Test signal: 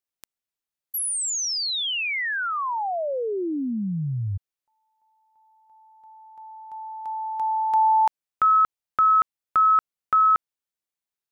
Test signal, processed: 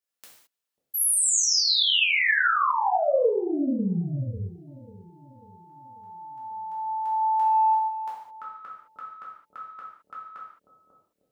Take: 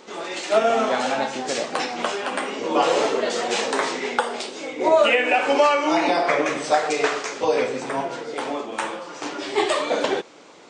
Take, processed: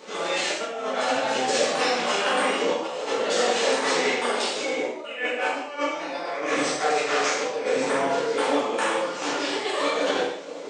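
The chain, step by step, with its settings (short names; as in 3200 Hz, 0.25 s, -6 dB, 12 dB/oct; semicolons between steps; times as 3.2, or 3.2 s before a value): on a send: analogue delay 0.542 s, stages 2048, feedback 51%, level -18 dB; on the sum: negative-ratio compressor -25 dBFS, ratio -0.5; HPF 220 Hz 6 dB/oct; non-linear reverb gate 0.24 s falling, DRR -6 dB; gain -5.5 dB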